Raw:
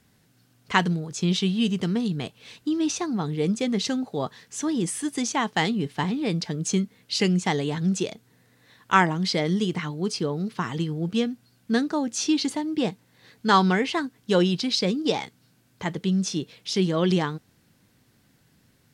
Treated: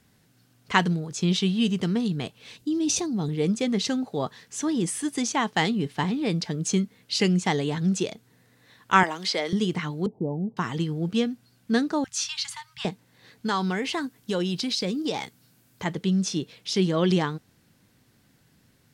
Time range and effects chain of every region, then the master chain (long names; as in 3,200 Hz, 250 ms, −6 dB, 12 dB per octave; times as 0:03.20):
0:02.57–0:03.29: parametric band 1,400 Hz −12 dB 2 octaves + level that may fall only so fast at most 24 dB per second
0:09.03–0:09.53: high-pass filter 460 Hz + multiband upward and downward compressor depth 40%
0:10.06–0:10.57: Butterworth low-pass 900 Hz 72 dB per octave + dynamic equaliser 440 Hz, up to −5 dB, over −38 dBFS, Q 3.5
0:12.04–0:12.85: inverse Chebyshev band-stop filter 240–570 Hz, stop band 50 dB + mains-hum notches 50/100/150 Hz
0:13.46–0:15.84: high-shelf EQ 9,400 Hz +10 dB + downward compressor 2.5 to 1, threshold −25 dBFS
whole clip: no processing